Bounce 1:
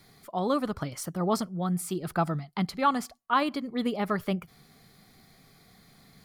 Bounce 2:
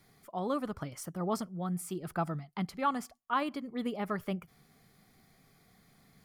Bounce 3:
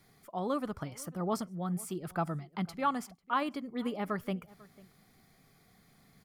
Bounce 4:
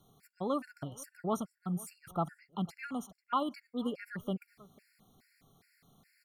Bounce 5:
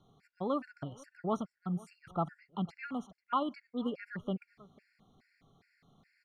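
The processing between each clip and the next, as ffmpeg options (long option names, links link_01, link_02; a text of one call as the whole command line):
ffmpeg -i in.wav -af "equalizer=frequency=4100:width_type=o:width=0.44:gain=-6,volume=-6dB" out.wav
ffmpeg -i in.wav -filter_complex "[0:a]asplit=2[link_01][link_02];[link_02]adelay=495.6,volume=-22dB,highshelf=frequency=4000:gain=-11.2[link_03];[link_01][link_03]amix=inputs=2:normalize=0" out.wav
ffmpeg -i in.wav -af "afftfilt=real='re*gt(sin(2*PI*2.4*pts/sr)*(1-2*mod(floor(b*sr/1024/1400),2)),0)':imag='im*gt(sin(2*PI*2.4*pts/sr)*(1-2*mod(floor(b*sr/1024/1400),2)),0)':win_size=1024:overlap=0.75" out.wav
ffmpeg -i in.wav -af "lowpass=3800" out.wav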